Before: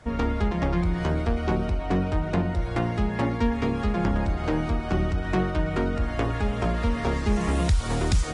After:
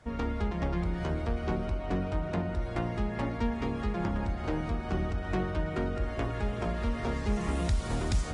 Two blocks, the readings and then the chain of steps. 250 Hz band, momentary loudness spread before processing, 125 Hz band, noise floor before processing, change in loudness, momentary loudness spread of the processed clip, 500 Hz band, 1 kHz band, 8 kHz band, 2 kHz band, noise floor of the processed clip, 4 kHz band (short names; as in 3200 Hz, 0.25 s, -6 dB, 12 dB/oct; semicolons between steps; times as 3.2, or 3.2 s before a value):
-7.0 dB, 2 LU, -6.5 dB, -30 dBFS, -6.5 dB, 2 LU, -6.0 dB, -6.5 dB, n/a, -6.5 dB, -36 dBFS, -7.0 dB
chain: dark delay 0.204 s, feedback 84%, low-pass 2600 Hz, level -15 dB; gain -7 dB